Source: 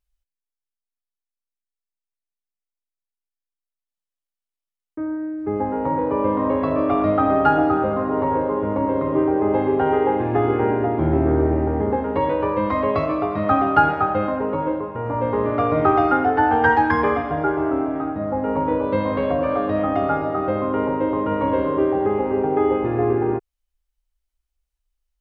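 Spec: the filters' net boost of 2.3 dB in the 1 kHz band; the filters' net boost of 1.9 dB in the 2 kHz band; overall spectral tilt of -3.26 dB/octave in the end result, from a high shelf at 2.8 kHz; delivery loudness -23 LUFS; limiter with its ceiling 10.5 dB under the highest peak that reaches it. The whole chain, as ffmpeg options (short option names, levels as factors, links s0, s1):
-af "equalizer=f=1000:t=o:g=3,equalizer=f=2000:t=o:g=3.5,highshelf=f=2800:g=-6.5,volume=0.794,alimiter=limit=0.224:level=0:latency=1"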